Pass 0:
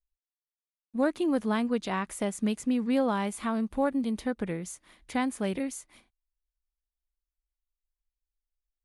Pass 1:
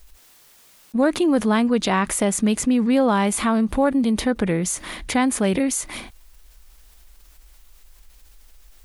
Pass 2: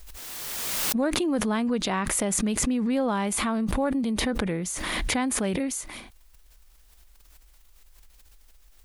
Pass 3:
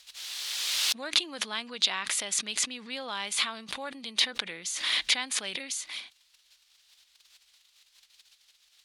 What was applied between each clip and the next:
fast leveller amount 50%; gain +7 dB
backwards sustainer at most 21 dB/s; gain -7.5 dB
band-pass 3800 Hz, Q 1.8; gain +8.5 dB

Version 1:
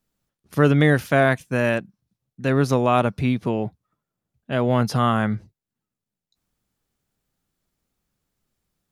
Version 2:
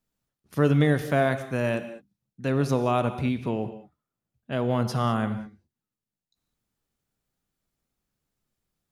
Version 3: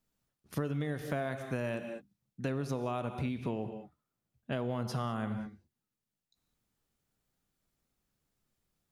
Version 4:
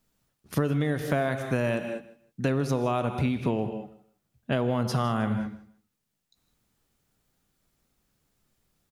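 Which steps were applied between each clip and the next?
dynamic EQ 1700 Hz, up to -4 dB, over -32 dBFS, Q 1.3; non-linear reverb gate 0.23 s flat, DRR 10 dB; gain -5 dB
compressor 10:1, threshold -31 dBFS, peak gain reduction 15.5 dB
feedback echo 0.158 s, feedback 21%, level -18 dB; gain +8.5 dB

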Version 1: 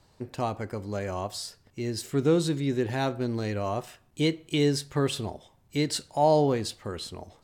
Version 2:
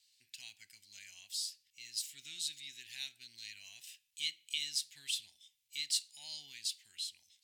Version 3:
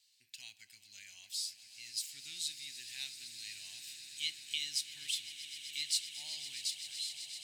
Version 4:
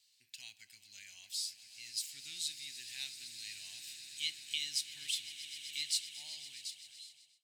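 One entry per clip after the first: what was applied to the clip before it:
inverse Chebyshev high-pass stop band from 1300 Hz, stop band 40 dB; gain -1.5 dB
swelling echo 0.128 s, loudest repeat 8, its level -16 dB
ending faded out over 1.66 s

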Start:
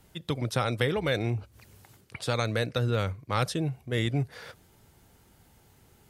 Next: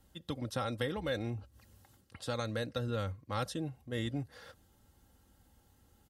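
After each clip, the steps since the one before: bell 68 Hz +5.5 dB 2.2 oct; notch 2300 Hz, Q 5.2; comb 3.7 ms, depth 49%; gain -9 dB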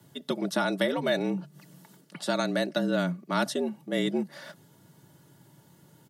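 frequency shift +82 Hz; gain +8.5 dB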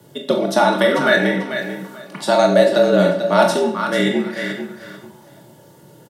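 feedback echo 0.442 s, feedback 23%, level -9 dB; reverb RT60 0.60 s, pre-delay 23 ms, DRR 2.5 dB; LFO bell 0.34 Hz 480–1900 Hz +10 dB; gain +7 dB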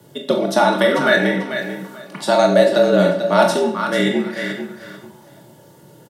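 nothing audible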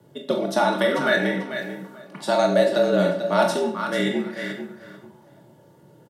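mismatched tape noise reduction decoder only; gain -5.5 dB

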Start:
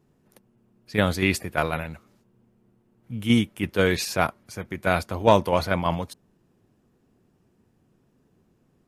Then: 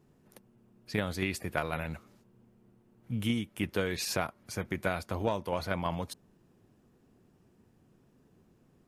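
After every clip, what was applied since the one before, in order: compressor 12:1, threshold -27 dBFS, peak gain reduction 16.5 dB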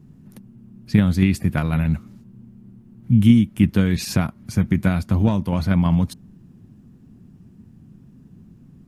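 resonant low shelf 310 Hz +12.5 dB, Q 1.5; gain +5 dB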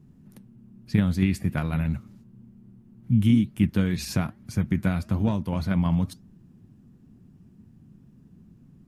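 flange 1.1 Hz, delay 1.6 ms, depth 6.4 ms, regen -88%; gain -1 dB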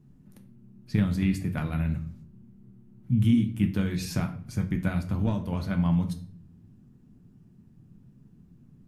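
shoebox room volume 61 m³, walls mixed, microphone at 0.36 m; gain -4 dB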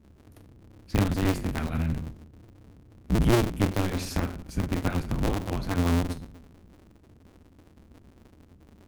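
cycle switcher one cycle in 2, inverted

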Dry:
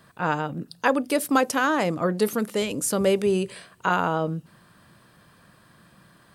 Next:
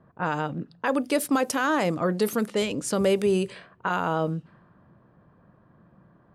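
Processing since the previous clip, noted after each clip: low-pass opened by the level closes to 800 Hz, open at -20 dBFS; limiter -13.5 dBFS, peak gain reduction 6.5 dB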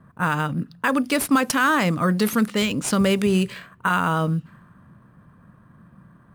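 band shelf 520 Hz -8.5 dB; in parallel at -9 dB: sample-rate reducer 9800 Hz, jitter 0%; on the sum: gain +5 dB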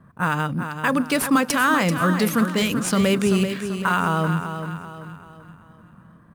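feedback echo 0.387 s, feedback 43%, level -8.5 dB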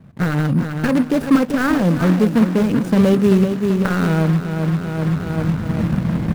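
median filter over 41 samples; recorder AGC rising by 20 dB/s; gain +6.5 dB

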